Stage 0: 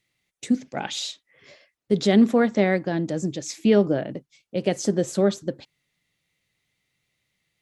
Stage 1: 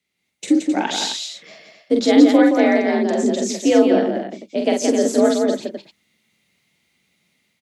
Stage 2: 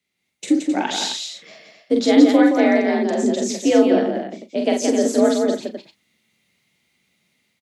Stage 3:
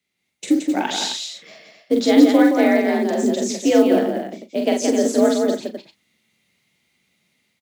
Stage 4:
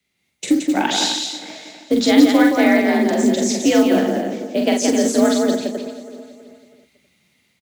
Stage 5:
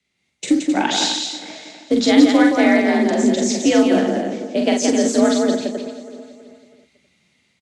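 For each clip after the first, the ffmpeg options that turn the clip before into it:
-filter_complex "[0:a]dynaudnorm=f=110:g=5:m=3.16,afreqshift=59,asplit=2[s0][s1];[s1]aecho=0:1:45|172|205|263:0.631|0.596|0.15|0.376[s2];[s0][s2]amix=inputs=2:normalize=0,volume=0.668"
-filter_complex "[0:a]asplit=2[s0][s1];[s1]adelay=37,volume=0.224[s2];[s0][s2]amix=inputs=2:normalize=0,volume=0.891"
-af "acrusher=bits=8:mode=log:mix=0:aa=0.000001"
-filter_complex "[0:a]aecho=1:1:324|648|972|1296:0.141|0.0636|0.0286|0.0129,acrossover=split=270|730|3600[s0][s1][s2][s3];[s1]acompressor=threshold=0.0447:ratio=6[s4];[s0][s4][s2][s3]amix=inputs=4:normalize=0,lowshelf=f=68:g=12,volume=1.68"
-af "lowpass=f=9000:w=0.5412,lowpass=f=9000:w=1.3066"

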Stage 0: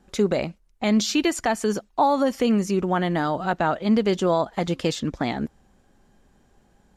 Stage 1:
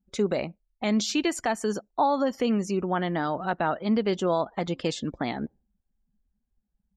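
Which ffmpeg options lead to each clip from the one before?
-af "afftdn=nr=30:nf=-44,lowshelf=f=89:g=-7.5,volume=0.668"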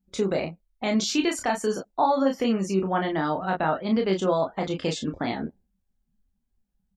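-af "aecho=1:1:26|37:0.562|0.422"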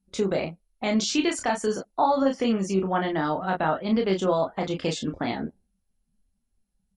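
-ar 44100 -c:a mp2 -b:a 64k

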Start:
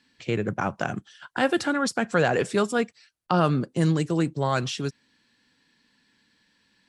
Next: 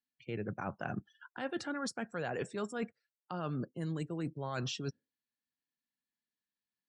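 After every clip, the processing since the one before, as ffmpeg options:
-af "afftdn=nr=30:nf=-41,areverse,acompressor=threshold=0.0282:ratio=8,areverse,volume=0.668"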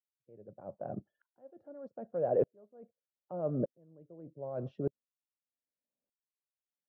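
-af "lowpass=f=580:t=q:w=5.3,aeval=exprs='val(0)*pow(10,-36*if(lt(mod(-0.82*n/s,1),2*abs(-0.82)/1000),1-mod(-0.82*n/s,1)/(2*abs(-0.82)/1000),(mod(-0.82*n/s,1)-2*abs(-0.82)/1000)/(1-2*abs(-0.82)/1000))/20)':c=same,volume=1.58"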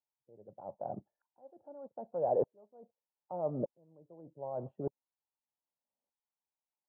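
-af "lowpass=f=890:t=q:w=5.3,volume=0.562"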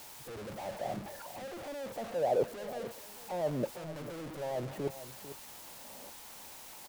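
-af "aeval=exprs='val(0)+0.5*0.0119*sgn(val(0))':c=same,aecho=1:1:447:0.211"

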